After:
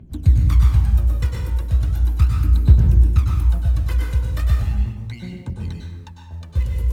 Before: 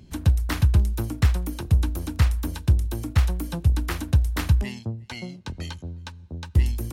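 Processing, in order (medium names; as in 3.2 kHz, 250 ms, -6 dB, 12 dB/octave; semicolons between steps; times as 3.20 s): local Wiener filter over 9 samples; bass shelf 250 Hz +5.5 dB; in parallel at -10 dB: short-mantissa float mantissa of 2-bit; on the sum: phaser 0.37 Hz, delay 2.2 ms, feedback 70%; plate-style reverb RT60 1 s, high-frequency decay 0.65×, pre-delay 90 ms, DRR -0.5 dB; trim -11 dB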